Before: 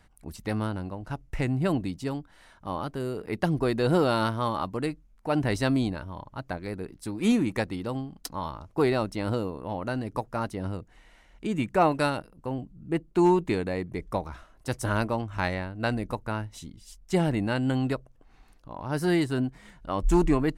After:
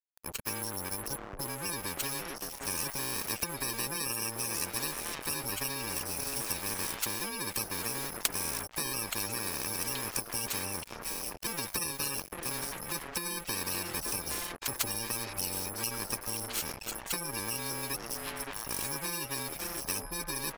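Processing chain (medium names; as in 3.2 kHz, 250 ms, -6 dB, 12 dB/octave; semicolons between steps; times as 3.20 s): bit-reversed sample order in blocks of 64 samples; resampled via 32 kHz; spectral gate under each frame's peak -20 dB strong; treble shelf 2 kHz +5 dB; on a send: repeats whose band climbs or falls 567 ms, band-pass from 430 Hz, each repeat 1.4 oct, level -8 dB; on the sum: level rider gain up to 8 dB; crossover distortion -42.5 dBFS; compression, threshold -21 dBFS, peak gain reduction 11.5 dB; spectrum-flattening compressor 4:1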